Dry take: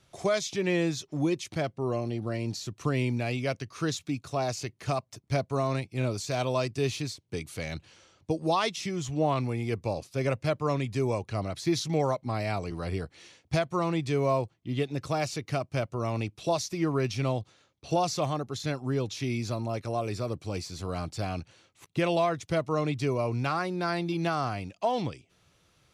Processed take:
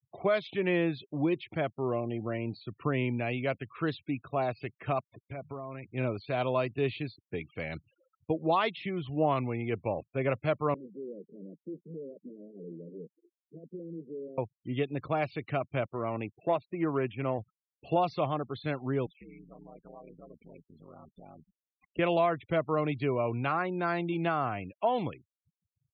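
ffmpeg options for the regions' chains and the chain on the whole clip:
ffmpeg -i in.wav -filter_complex "[0:a]asettb=1/sr,asplit=3[link_01][link_02][link_03];[link_01]atrim=end=5.214[link_04];[link_02]atrim=start=5.21:end=5.91,asetpts=PTS-STARTPTS,afade=type=in:duration=0.004:curve=qsin,afade=type=out:start_time=0.696:duration=0.004:curve=qsin,bandreject=frequency=50:width_type=h:width=6,bandreject=frequency=100:width_type=h:width=6,bandreject=frequency=150:width_type=h:width=6,acompressor=threshold=-33dB:ratio=20:attack=3.2:release=140:knee=1:detection=peak[link_05];[link_03]atrim=start=5.906[link_06];[link_04][link_05]acrossfade=duration=0.004:curve1=hsin:curve2=qsin[link_07];[link_07][link_06]acrossfade=duration=0.004:curve1=qsin:curve2=hsin,asettb=1/sr,asplit=3[link_08][link_09][link_10];[link_08]atrim=end=10.744[link_11];[link_09]atrim=start=10.74:end=14.38,asetpts=PTS-STARTPTS,afade=type=in:duration=0.004:curve=qsin,afade=type=out:start_time=3.636:duration=0.004:curve=qsin,volume=35dB,asoftclip=hard,volume=-35dB,asuperpass=centerf=290:order=12:qfactor=0.85[link_12];[link_10]atrim=start=14.376[link_13];[link_11][link_12]acrossfade=duration=0.004:curve1=hsin:curve2=qsin[link_14];[link_14][link_13]acrossfade=duration=0.004:curve1=qsin:curve2=hsin,asettb=1/sr,asplit=3[link_15][link_16][link_17];[link_15]atrim=end=15.864[link_18];[link_16]atrim=start=15.86:end=17.39,asetpts=PTS-STARTPTS,afade=type=in:duration=0.004:curve=qsin,afade=type=out:start_time=1.526:duration=0.004:curve=qsin,lowshelf=frequency=93:gain=-10,adynamicsmooth=sensitivity=4:basefreq=1500[link_19];[link_17]atrim=start=17.386[link_20];[link_18][link_19]acrossfade=duration=0.004:curve1=hsin:curve2=qsin[link_21];[link_21][link_20]acrossfade=duration=0.004:curve1=qsin:curve2=hsin,asettb=1/sr,asplit=3[link_22][link_23][link_24];[link_22]atrim=end=19.064[link_25];[link_23]atrim=start=19.06:end=21.99,asetpts=PTS-STARTPTS,afade=type=in:duration=0.004:curve=qsin,afade=type=out:start_time=2.926:duration=0.004:curve=qsin,acompressor=threshold=-43dB:ratio=5:attack=3.2:release=140:knee=1:detection=peak,aeval=exprs='val(0)*sin(2*PI*72*n/s)':channel_layout=same[link_26];[link_24]atrim=start=21.986[link_27];[link_25][link_26]acrossfade=duration=0.004:curve1=hsin:curve2=qsin[link_28];[link_28][link_27]acrossfade=duration=0.004:curve1=qsin:curve2=hsin,lowpass=frequency=3200:width=0.5412,lowpass=frequency=3200:width=1.3066,afftfilt=real='re*gte(hypot(re,im),0.00501)':imag='im*gte(hypot(re,im),0.00501)':win_size=1024:overlap=0.75,highpass=frequency=160:poles=1" out.wav

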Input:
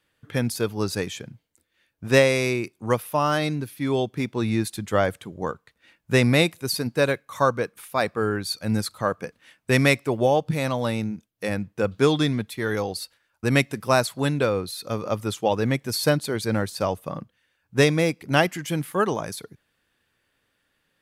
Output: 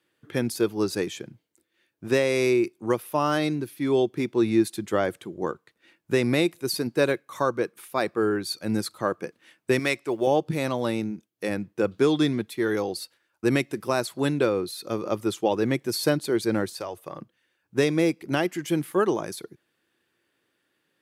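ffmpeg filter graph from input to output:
ffmpeg -i in.wav -filter_complex "[0:a]asettb=1/sr,asplit=3[link_01][link_02][link_03];[link_01]atrim=end=9.794[link_04];[link_02]atrim=start=9.79:end=10.27,asetpts=PTS-STARTPTS,afade=type=in:duration=0.004:curve=qsin,afade=type=out:start_time=0.476:duration=0.004:curve=qsin,lowpass=11000,lowshelf=frequency=500:gain=-8.5,acrusher=bits=9:mode=log:mix=0:aa=0.000001[link_05];[link_03]atrim=start=10.266[link_06];[link_04][link_05]acrossfade=duration=0.004:curve1=hsin:curve2=qsin[link_07];[link_07][link_06]acrossfade=duration=0.004:curve1=qsin:curve2=hsin,asettb=1/sr,asplit=3[link_08][link_09][link_10];[link_08]atrim=end=16.734[link_11];[link_09]atrim=start=16.73:end=17.21,asetpts=PTS-STARTPTS,afade=type=in:duration=0.004:curve=qsin,afade=type=out:start_time=0.476:duration=0.004:curve=qsin,highpass=57,equalizer=frequency=220:width=1.3:gain=-13,acompressor=threshold=-29dB:ratio=2.5:attack=3.2:release=140:knee=1:detection=peak[link_12];[link_10]atrim=start=17.206[link_13];[link_11][link_12]acrossfade=duration=0.004:curve1=hsin:curve2=qsin[link_14];[link_14][link_13]acrossfade=duration=0.004:curve1=qsin:curve2=hsin,highpass=130,equalizer=frequency=350:width=3.5:gain=10.5,alimiter=limit=-8dB:level=0:latency=1:release=232,volume=-2.5dB" out.wav

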